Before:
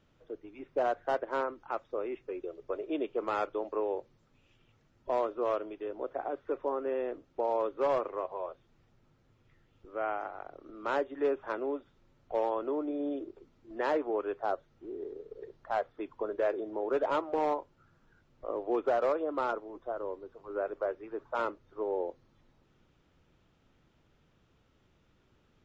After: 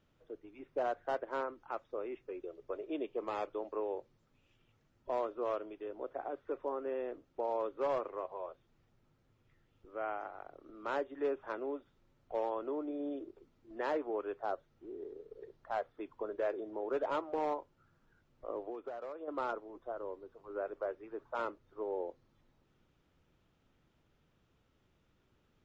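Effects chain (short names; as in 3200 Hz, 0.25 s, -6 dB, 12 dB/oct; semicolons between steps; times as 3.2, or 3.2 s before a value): 2.99–3.5 notch 1400 Hz, Q 5.4; 18.64–19.28 compressor 12:1, threshold -35 dBFS, peak gain reduction 11 dB; gain -5 dB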